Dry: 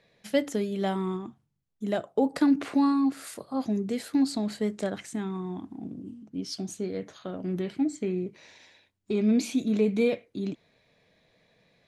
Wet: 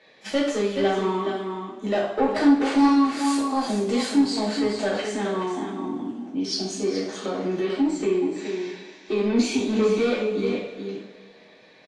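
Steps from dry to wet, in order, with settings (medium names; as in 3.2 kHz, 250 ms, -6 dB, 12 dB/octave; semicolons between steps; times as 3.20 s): three-band isolator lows -21 dB, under 260 Hz, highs -18 dB, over 6.8 kHz; on a send: delay 424 ms -9.5 dB; on the sum: saturation -24.5 dBFS, distortion -13 dB; 2.65–4.07 s: treble shelf 4.2 kHz +9.5 dB; two-slope reverb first 0.51 s, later 2.2 s, from -18 dB, DRR -7 dB; in parallel at 0 dB: compression, threshold -32 dBFS, peak gain reduction 17 dB; on the sum: AAC 48 kbps 24 kHz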